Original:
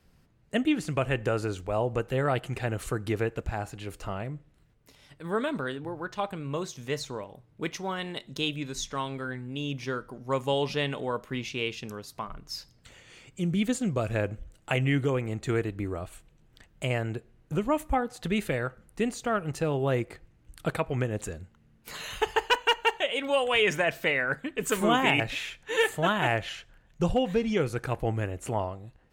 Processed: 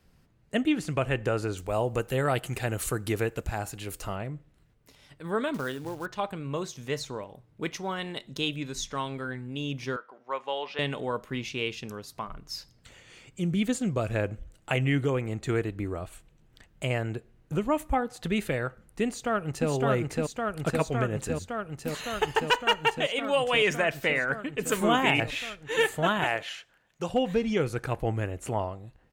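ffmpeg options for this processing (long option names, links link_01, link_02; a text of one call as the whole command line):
ffmpeg -i in.wav -filter_complex "[0:a]asettb=1/sr,asplit=3[link_01][link_02][link_03];[link_01]atrim=end=1.574[link_04];[link_02]atrim=start=1.57:end=4.16,asetpts=PTS-STARTPTS,afade=type=in:duration=0.004:curve=qsin,afade=type=out:start_time=2.586:duration=0.004:curve=qsin,aemphasis=mode=production:type=50kf[link_05];[link_03]atrim=start=4.156[link_06];[link_04][link_05]acrossfade=duration=0.004:curve1=hsin:curve2=qsin[link_07];[link_07][link_06]acrossfade=duration=0.004:curve1=qsin:curve2=hsin,asettb=1/sr,asplit=3[link_08][link_09][link_10];[link_08]atrim=end=5.544[link_11];[link_09]atrim=start=5.54:end=6.06,asetpts=PTS-STARTPTS,afade=type=in:duration=0.004:curve=qsin,afade=type=out:start_time=0.516:duration=0.004:curve=qsin,acrusher=bits=4:mode=log:mix=0:aa=0.000001[link_12];[link_10]atrim=start=6.056[link_13];[link_11][link_12]acrossfade=duration=0.004:curve1=hsin:curve2=qsin[link_14];[link_14][link_13]acrossfade=duration=0.004:curve1=qsin:curve2=hsin,asettb=1/sr,asplit=3[link_15][link_16][link_17];[link_15]atrim=end=9.964[link_18];[link_16]atrim=start=9.96:end=10.79,asetpts=PTS-STARTPTS,afade=type=in:duration=0.004:curve=qsin,afade=type=out:start_time=0.826:duration=0.004:curve=qsin,highpass=680,lowpass=2900[link_19];[link_17]atrim=start=10.786[link_20];[link_18][link_19]acrossfade=duration=0.004:curve1=hsin:curve2=qsin[link_21];[link_21][link_20]acrossfade=duration=0.004:curve1=qsin:curve2=hsin,asplit=2[link_22][link_23];[link_23]afade=type=in:start_time=19.05:duration=0.01,afade=type=out:start_time=19.7:duration=0.01,aecho=0:1:560|1120|1680|2240|2800|3360|3920|4480|5040|5600|6160|6720:0.841395|0.715186|0.607908|0.516722|0.439214|0.373331|0.317332|0.269732|0.229272|0.194881|0.165649|0.140802[link_24];[link_22][link_24]amix=inputs=2:normalize=0,asettb=1/sr,asplit=3[link_25][link_26][link_27];[link_25]atrim=end=26.244[link_28];[link_26]atrim=start=26.24:end=27.14,asetpts=PTS-STARTPTS,afade=type=in:duration=0.004:curve=qsin,afade=type=out:start_time=0.896:duration=0.004:curve=qsin,highpass=frequency=550:poles=1[link_29];[link_27]atrim=start=27.136[link_30];[link_28][link_29]acrossfade=duration=0.004:curve1=hsin:curve2=qsin[link_31];[link_31][link_30]acrossfade=duration=0.004:curve1=qsin:curve2=hsin" out.wav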